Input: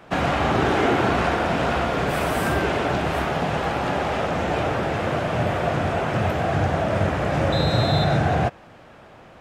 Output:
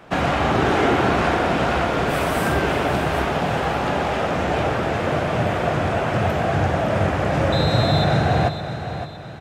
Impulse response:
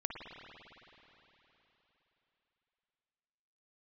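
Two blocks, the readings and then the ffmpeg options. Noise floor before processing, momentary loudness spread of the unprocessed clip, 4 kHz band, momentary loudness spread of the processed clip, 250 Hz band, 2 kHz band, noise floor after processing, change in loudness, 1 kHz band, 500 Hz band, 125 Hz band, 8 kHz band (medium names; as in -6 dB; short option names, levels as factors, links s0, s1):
-47 dBFS, 4 LU, +2.0 dB, 4 LU, +2.0 dB, +2.0 dB, -30 dBFS, +1.5 dB, +2.0 dB, +2.0 dB, +2.0 dB, +2.0 dB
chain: -af "aecho=1:1:562|1124|1686|2248:0.299|0.119|0.0478|0.0191,volume=1.19"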